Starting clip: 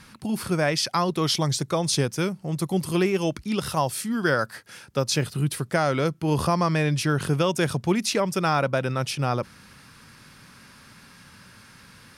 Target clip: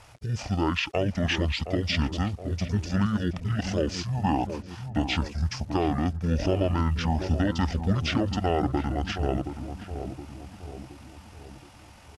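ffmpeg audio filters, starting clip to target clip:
-filter_complex "[0:a]acrusher=bits=8:mix=0:aa=0.000001,asplit=2[s0][s1];[s1]adelay=722,lowpass=f=1700:p=1,volume=0.398,asplit=2[s2][s3];[s3]adelay=722,lowpass=f=1700:p=1,volume=0.54,asplit=2[s4][s5];[s5]adelay=722,lowpass=f=1700:p=1,volume=0.54,asplit=2[s6][s7];[s7]adelay=722,lowpass=f=1700:p=1,volume=0.54,asplit=2[s8][s9];[s9]adelay=722,lowpass=f=1700:p=1,volume=0.54,asplit=2[s10][s11];[s11]adelay=722,lowpass=f=1700:p=1,volume=0.54[s12];[s0][s2][s4][s6][s8][s10][s12]amix=inputs=7:normalize=0,asetrate=24046,aresample=44100,atempo=1.83401,volume=0.75"

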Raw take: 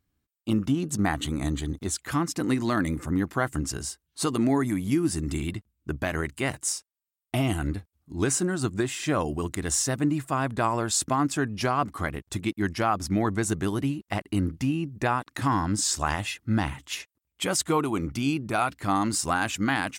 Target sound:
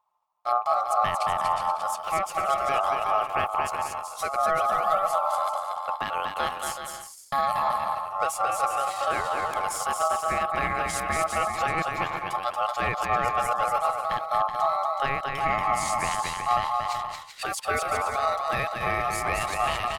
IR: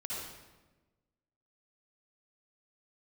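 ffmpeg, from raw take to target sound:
-af "bass=f=250:g=7,treble=f=4000:g=-4,aeval=exprs='val(0)*sin(2*PI*860*n/s)':c=same,aecho=1:1:230|379.5|476.7|539.8|580.9:0.631|0.398|0.251|0.158|0.1,asetrate=49501,aresample=44100,atempo=0.890899,equalizer=f=260:w=2.5:g=-8.5,volume=0.841"

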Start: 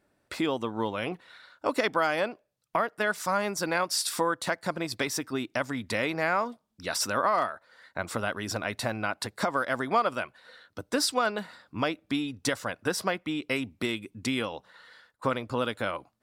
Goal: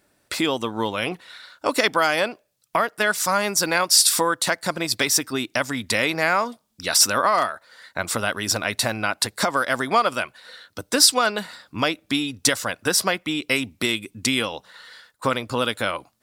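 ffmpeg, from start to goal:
-af "highshelf=f=2800:g=11,volume=1.68"

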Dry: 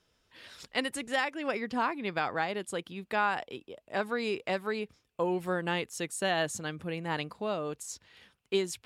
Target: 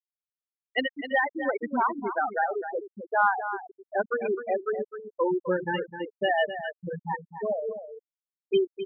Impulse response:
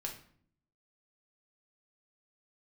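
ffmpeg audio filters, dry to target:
-filter_complex "[0:a]aeval=exprs='val(0)+0.5*0.00944*sgn(val(0))':c=same,lowshelf=f=350:g=-4.5,bandreject=f=75.34:t=h:w=4,bandreject=f=150.68:t=h:w=4,bandreject=f=226.02:t=h:w=4,asplit=2[s0][s1];[1:a]atrim=start_sample=2205,lowshelf=f=82:g=2.5[s2];[s1][s2]afir=irnorm=-1:irlink=0,volume=0.237[s3];[s0][s3]amix=inputs=2:normalize=0,afftfilt=real='re*gte(hypot(re,im),0.141)':imag='im*gte(hypot(re,im),0.141)':win_size=1024:overlap=0.75,asplit=2[s4][s5];[s5]aecho=0:1:258:0.299[s6];[s4][s6]amix=inputs=2:normalize=0,acontrast=31"

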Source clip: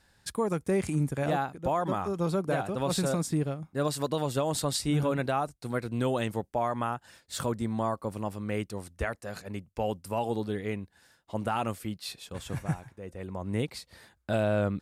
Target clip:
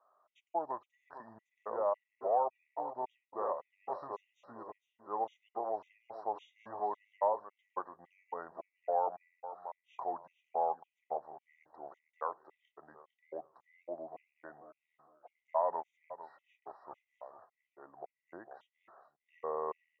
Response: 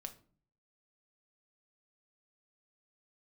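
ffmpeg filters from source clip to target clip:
-filter_complex "[0:a]asuperpass=centerf=1100:order=4:qfactor=1.6,aecho=1:1:336|672|1008:0.266|0.0665|0.0166,asplit=2[s0][s1];[1:a]atrim=start_sample=2205[s2];[s1][s2]afir=irnorm=-1:irlink=0,volume=0.251[s3];[s0][s3]amix=inputs=2:normalize=0,asetrate=32667,aresample=44100,afftfilt=real='re*gt(sin(2*PI*1.8*pts/sr)*(1-2*mod(floor(b*sr/1024/1900),2)),0)':imag='im*gt(sin(2*PI*1.8*pts/sr)*(1-2*mod(floor(b*sr/1024/1900),2)),0)':win_size=1024:overlap=0.75,volume=1.12"

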